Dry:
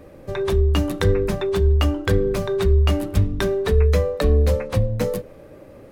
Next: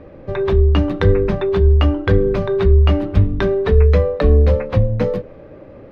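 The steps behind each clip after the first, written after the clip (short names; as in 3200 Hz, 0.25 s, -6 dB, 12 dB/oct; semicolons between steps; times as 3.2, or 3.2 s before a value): air absorption 270 m; gain +5 dB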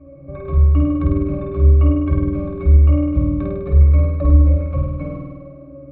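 octave resonator C#, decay 0.23 s; on a send: flutter echo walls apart 8.7 m, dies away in 1.4 s; on the sum: gain +6.5 dB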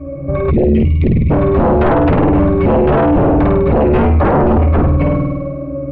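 spectral gain 0.5–1.31, 230–1900 Hz -28 dB; sine folder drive 18 dB, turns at -1 dBFS; gain -6.5 dB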